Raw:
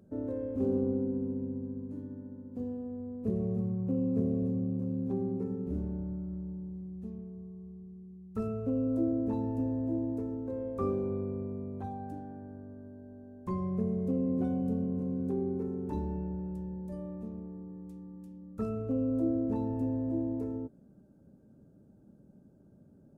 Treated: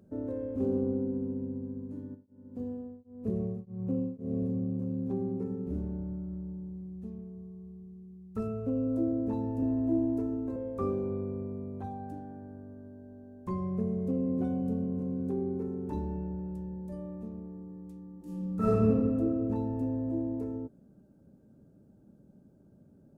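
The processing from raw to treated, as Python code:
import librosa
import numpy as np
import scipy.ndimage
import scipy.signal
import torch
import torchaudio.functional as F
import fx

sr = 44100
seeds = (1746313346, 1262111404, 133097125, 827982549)

y = fx.tremolo_abs(x, sr, hz=fx.line((2.14, 1.1), (4.48, 2.3)), at=(2.14, 4.48), fade=0.02)
y = fx.comb(y, sr, ms=3.0, depth=0.98, at=(9.62, 10.56))
y = fx.reverb_throw(y, sr, start_s=18.17, length_s=0.7, rt60_s=2.0, drr_db=-11.5)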